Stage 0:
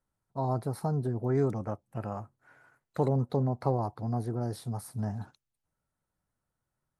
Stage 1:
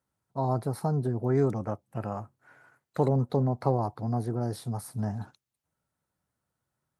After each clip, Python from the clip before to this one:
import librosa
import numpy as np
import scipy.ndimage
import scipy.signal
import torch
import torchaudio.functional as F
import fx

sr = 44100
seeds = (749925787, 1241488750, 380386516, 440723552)

y = scipy.signal.sosfilt(scipy.signal.butter(2, 73.0, 'highpass', fs=sr, output='sos'), x)
y = F.gain(torch.from_numpy(y), 2.5).numpy()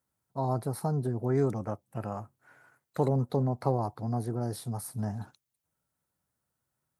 y = fx.high_shelf(x, sr, hz=8200.0, db=8.5)
y = F.gain(torch.from_numpy(y), -2.0).numpy()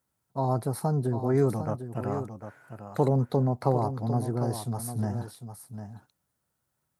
y = x + 10.0 ** (-10.0 / 20.0) * np.pad(x, (int(751 * sr / 1000.0), 0))[:len(x)]
y = F.gain(torch.from_numpy(y), 3.0).numpy()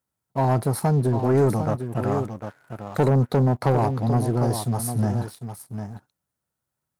y = fx.leveller(x, sr, passes=2)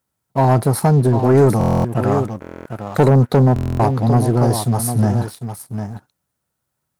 y = fx.buffer_glitch(x, sr, at_s=(1.59, 2.4, 3.54), block=1024, repeats=10)
y = F.gain(torch.from_numpy(y), 7.0).numpy()